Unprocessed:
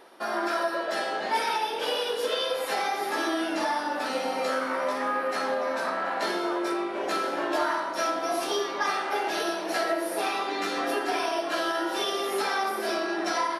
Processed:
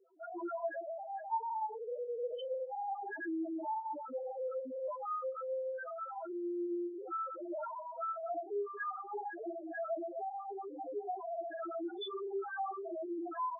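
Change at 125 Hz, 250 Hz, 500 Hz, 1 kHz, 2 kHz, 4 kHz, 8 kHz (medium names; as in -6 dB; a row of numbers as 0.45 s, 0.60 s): no reading, -9.5 dB, -10.0 dB, -11.0 dB, -18.5 dB, under -20 dB, under -40 dB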